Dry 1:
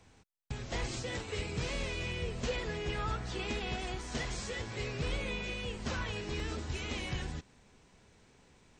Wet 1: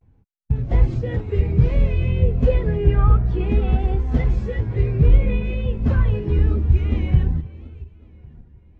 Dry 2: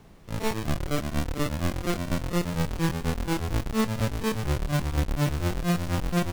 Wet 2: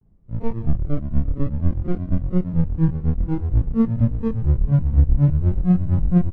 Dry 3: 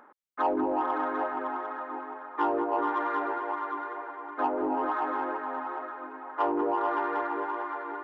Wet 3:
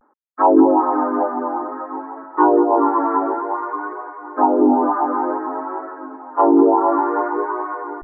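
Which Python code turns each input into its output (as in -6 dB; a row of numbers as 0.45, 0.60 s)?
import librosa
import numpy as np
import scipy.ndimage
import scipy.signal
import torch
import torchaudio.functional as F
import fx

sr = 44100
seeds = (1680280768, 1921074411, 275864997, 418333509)

y = fx.reverse_delay_fb(x, sr, ms=561, feedback_pct=54, wet_db=-14.0)
y = fx.lowpass(y, sr, hz=1700.0, slope=6)
y = fx.low_shelf(y, sr, hz=260.0, db=7.0)
y = fx.vibrato(y, sr, rate_hz=0.56, depth_cents=68.0)
y = fx.spectral_expand(y, sr, expansion=1.5)
y = y * 10.0 ** (-18 / 20.0) / np.sqrt(np.mean(np.square(y)))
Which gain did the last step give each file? +16.5, +4.5, +13.5 dB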